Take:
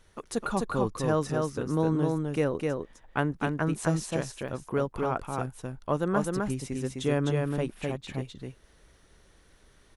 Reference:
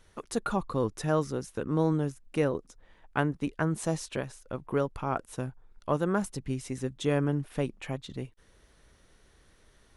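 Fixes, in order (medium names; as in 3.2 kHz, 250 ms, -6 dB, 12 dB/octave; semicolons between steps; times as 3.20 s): interpolate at 4.48 s, 4.7 ms; inverse comb 256 ms -3 dB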